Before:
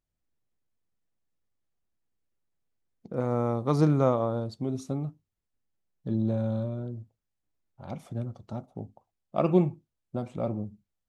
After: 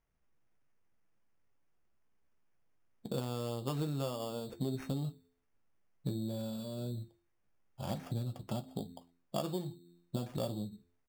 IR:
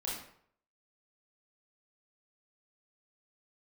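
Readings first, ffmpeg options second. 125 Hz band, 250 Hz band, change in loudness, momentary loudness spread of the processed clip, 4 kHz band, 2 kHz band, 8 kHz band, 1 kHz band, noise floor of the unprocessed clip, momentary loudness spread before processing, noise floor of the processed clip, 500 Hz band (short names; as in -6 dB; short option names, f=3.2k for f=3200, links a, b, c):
-8.5 dB, -10.0 dB, -10.0 dB, 9 LU, +5.5 dB, -6.5 dB, n/a, -10.5 dB, -85 dBFS, 18 LU, -76 dBFS, -11.0 dB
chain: -filter_complex "[0:a]bandreject=f=86.47:t=h:w=4,bandreject=f=172.94:t=h:w=4,bandreject=f=259.41:t=h:w=4,bandreject=f=345.88:t=h:w=4,bandreject=f=432.35:t=h:w=4,acompressor=threshold=-37dB:ratio=12,acrusher=samples=11:mix=1:aa=0.000001,flanger=delay=4.4:depth=4.7:regen=-61:speed=0.45:shape=sinusoidal,asplit=2[a][b];[b]adelay=15,volume=-13dB[c];[a][c]amix=inputs=2:normalize=0,volume=8dB"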